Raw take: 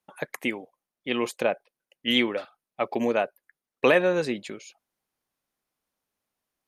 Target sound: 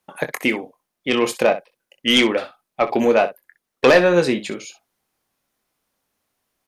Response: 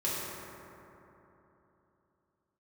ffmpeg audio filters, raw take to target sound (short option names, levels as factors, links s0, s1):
-af "aeval=exprs='0.447*sin(PI/2*1.78*val(0)/0.447)':c=same,aecho=1:1:23|63:0.355|0.2"